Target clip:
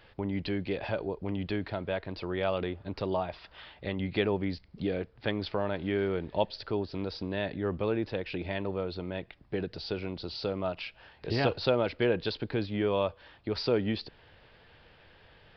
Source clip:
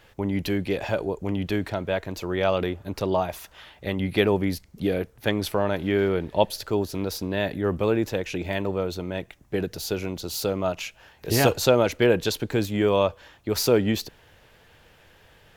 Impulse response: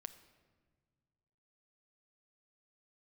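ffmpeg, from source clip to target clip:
-filter_complex "[0:a]asplit=2[s0][s1];[s1]acompressor=threshold=0.0224:ratio=6,volume=1.12[s2];[s0][s2]amix=inputs=2:normalize=0,aresample=11025,aresample=44100,volume=0.355"

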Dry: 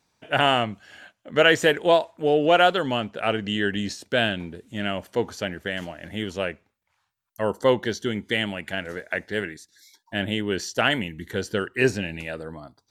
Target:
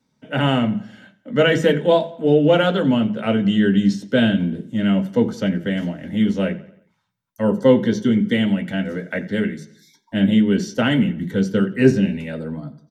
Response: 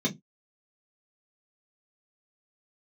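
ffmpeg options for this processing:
-filter_complex "[0:a]dynaudnorm=f=200:g=5:m=1.5,asplit=2[s0][s1];[s1]adelay=88,lowpass=f=4900:p=1,volume=0.133,asplit=2[s2][s3];[s3]adelay=88,lowpass=f=4900:p=1,volume=0.47,asplit=2[s4][s5];[s5]adelay=88,lowpass=f=4900:p=1,volume=0.47,asplit=2[s6][s7];[s7]adelay=88,lowpass=f=4900:p=1,volume=0.47[s8];[s0][s2][s4][s6][s8]amix=inputs=5:normalize=0,asplit=2[s9][s10];[1:a]atrim=start_sample=2205,lowshelf=f=150:g=10.5[s11];[s10][s11]afir=irnorm=-1:irlink=0,volume=0.355[s12];[s9][s12]amix=inputs=2:normalize=0,volume=0.596"

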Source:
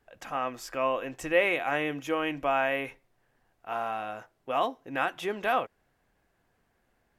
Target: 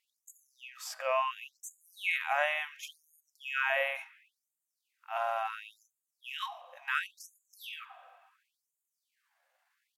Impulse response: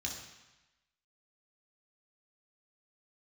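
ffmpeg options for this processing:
-filter_complex "[0:a]atempo=0.72,asplit=2[s0][s1];[1:a]atrim=start_sample=2205,asetrate=28665,aresample=44100[s2];[s1][s2]afir=irnorm=-1:irlink=0,volume=0.0891[s3];[s0][s3]amix=inputs=2:normalize=0,afftfilt=real='re*gte(b*sr/1024,490*pow(6600/490,0.5+0.5*sin(2*PI*0.71*pts/sr)))':imag='im*gte(b*sr/1024,490*pow(6600/490,0.5+0.5*sin(2*PI*0.71*pts/sr)))':win_size=1024:overlap=0.75"

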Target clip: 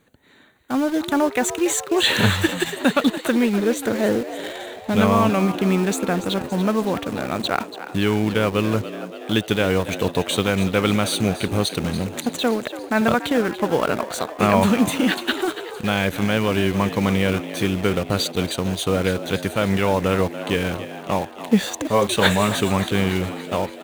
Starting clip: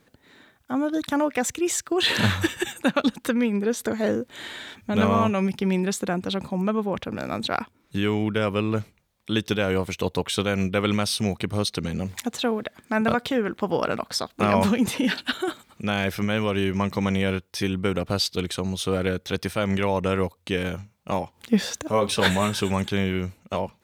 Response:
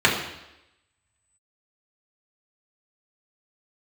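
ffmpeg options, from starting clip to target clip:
-filter_complex "[0:a]asuperstop=centerf=5200:order=4:qfactor=3.8,asplit=2[s0][s1];[s1]acrusher=bits=4:mix=0:aa=0.000001,volume=0.531[s2];[s0][s2]amix=inputs=2:normalize=0,asplit=8[s3][s4][s5][s6][s7][s8][s9][s10];[s4]adelay=285,afreqshift=74,volume=0.224[s11];[s5]adelay=570,afreqshift=148,volume=0.141[s12];[s6]adelay=855,afreqshift=222,volume=0.0891[s13];[s7]adelay=1140,afreqshift=296,volume=0.0562[s14];[s8]adelay=1425,afreqshift=370,volume=0.0351[s15];[s9]adelay=1710,afreqshift=444,volume=0.0221[s16];[s10]adelay=1995,afreqshift=518,volume=0.014[s17];[s3][s11][s12][s13][s14][s15][s16][s17]amix=inputs=8:normalize=0"

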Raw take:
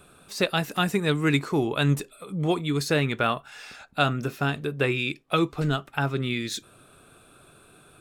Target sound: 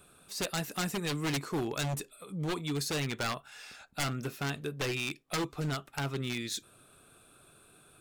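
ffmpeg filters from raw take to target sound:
-af "aeval=exprs='0.447*(cos(1*acos(clip(val(0)/0.447,-1,1)))-cos(1*PI/2))+0.0224*(cos(3*acos(clip(val(0)/0.447,-1,1)))-cos(3*PI/2))+0.0141*(cos(6*acos(clip(val(0)/0.447,-1,1)))-cos(6*PI/2))+0.00708*(cos(8*acos(clip(val(0)/0.447,-1,1)))-cos(8*PI/2))':c=same,aeval=exprs='0.0891*(abs(mod(val(0)/0.0891+3,4)-2)-1)':c=same,highshelf=f=4500:g=6.5,volume=0.501"

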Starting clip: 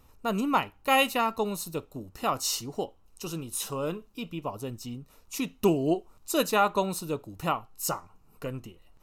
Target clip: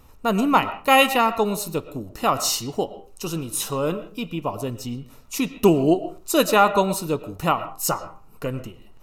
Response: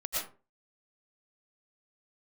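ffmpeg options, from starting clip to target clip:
-filter_complex "[0:a]asplit=2[s0][s1];[1:a]atrim=start_sample=2205,lowpass=3500[s2];[s1][s2]afir=irnorm=-1:irlink=0,volume=0.158[s3];[s0][s3]amix=inputs=2:normalize=0,volume=2.11"

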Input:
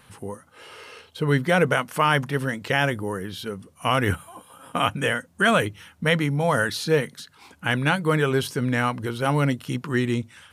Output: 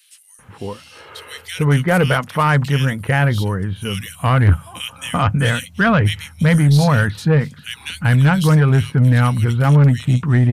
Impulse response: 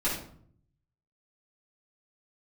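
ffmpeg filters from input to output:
-filter_complex "[0:a]asubboost=boost=7.5:cutoff=130,acrossover=split=2600[s0][s1];[s0]adelay=390[s2];[s2][s1]amix=inputs=2:normalize=0,aeval=exprs='0.631*(cos(1*acos(clip(val(0)/0.631,-1,1)))-cos(1*PI/2))+0.0891*(cos(5*acos(clip(val(0)/0.631,-1,1)))-cos(5*PI/2))+0.00891*(cos(8*acos(clip(val(0)/0.631,-1,1)))-cos(8*PI/2))':c=same,volume=1.19"

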